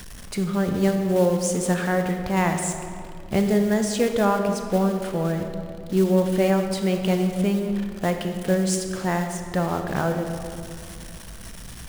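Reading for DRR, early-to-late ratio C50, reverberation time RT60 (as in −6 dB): 5.0 dB, 5.5 dB, 2.4 s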